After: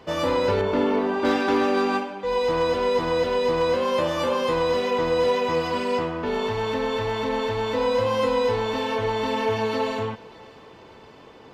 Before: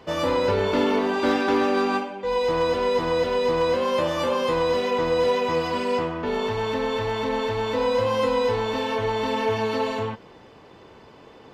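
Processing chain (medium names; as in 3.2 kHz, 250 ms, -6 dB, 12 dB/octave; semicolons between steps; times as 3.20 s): 0.61–1.25 s: treble shelf 2.8 kHz -11 dB; thinning echo 600 ms, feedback 65%, level -22.5 dB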